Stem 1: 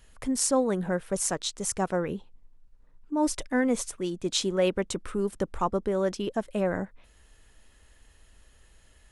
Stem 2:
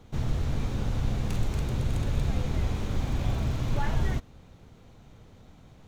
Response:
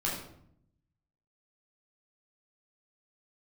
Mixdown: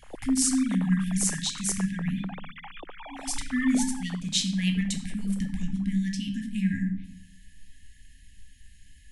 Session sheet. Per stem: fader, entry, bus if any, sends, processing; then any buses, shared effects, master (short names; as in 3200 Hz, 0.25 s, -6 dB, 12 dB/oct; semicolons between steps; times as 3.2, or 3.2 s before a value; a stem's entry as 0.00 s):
-2.0 dB, 0.00 s, send -5.5 dB, FFT band-reject 280–1600 Hz
-4.0 dB, 0.00 s, no send, sine-wave speech; compressor, threshold -30 dBFS, peak gain reduction 19 dB; auto duck -6 dB, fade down 0.20 s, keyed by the first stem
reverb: on, RT60 0.70 s, pre-delay 11 ms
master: dry